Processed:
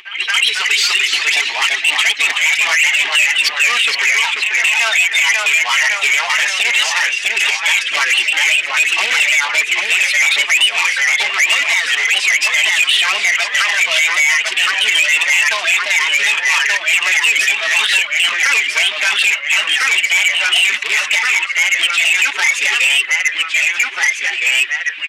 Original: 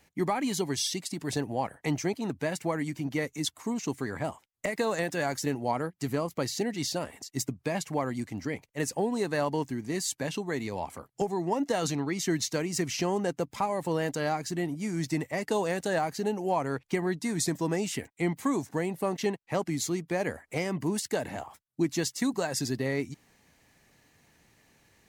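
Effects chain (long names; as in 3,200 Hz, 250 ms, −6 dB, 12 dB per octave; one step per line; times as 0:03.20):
reverb reduction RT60 0.89 s
comb filter 4.4 ms, depth 95%
automatic gain control gain up to 16 dB
formants moved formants +5 semitones
floating-point word with a short mantissa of 2 bits
flat-topped band-pass 2,500 Hz, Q 2.1
delay with pitch and tempo change per echo 257 ms, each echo −1 semitone, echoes 3, each echo −6 dB
backwards echo 225 ms −15 dB
boost into a limiter +25 dB
saturating transformer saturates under 3,600 Hz
level −1.5 dB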